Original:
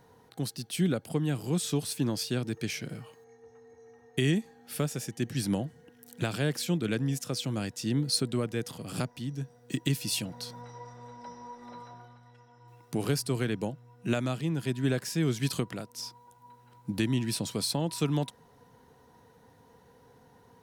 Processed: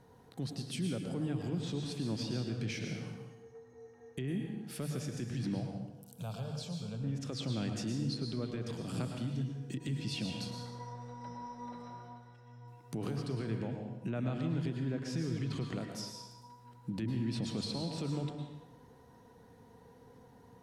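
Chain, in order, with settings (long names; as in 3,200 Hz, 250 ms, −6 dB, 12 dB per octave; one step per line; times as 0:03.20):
mains-hum notches 50/100/150 Hz
treble cut that deepens with the level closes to 2,200 Hz, closed at −24 dBFS
low-shelf EQ 410 Hz +7 dB
brickwall limiter −24 dBFS, peak gain reduction 12.5 dB
0:05.60–0:07.04: phaser with its sweep stopped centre 780 Hz, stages 4
on a send: convolution reverb RT60 1.0 s, pre-delay 98 ms, DRR 3 dB
on the sum: level −5 dB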